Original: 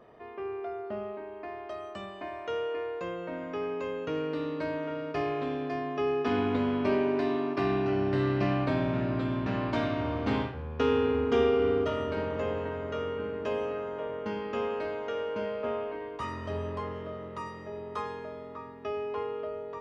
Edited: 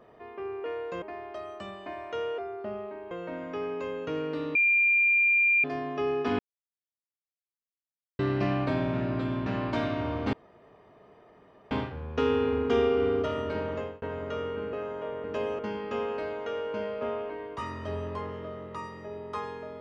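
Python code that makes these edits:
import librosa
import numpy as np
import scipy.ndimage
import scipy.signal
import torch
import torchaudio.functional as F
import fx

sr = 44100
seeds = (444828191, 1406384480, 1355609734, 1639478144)

y = fx.edit(x, sr, fx.swap(start_s=0.64, length_s=0.73, other_s=2.73, other_length_s=0.38),
    fx.bleep(start_s=4.55, length_s=1.09, hz=2390.0, db=-19.5),
    fx.silence(start_s=6.39, length_s=1.8),
    fx.insert_room_tone(at_s=10.33, length_s=1.38),
    fx.fade_out_span(start_s=12.35, length_s=0.29),
    fx.move(start_s=13.35, length_s=0.35, to_s=14.21), tone=tone)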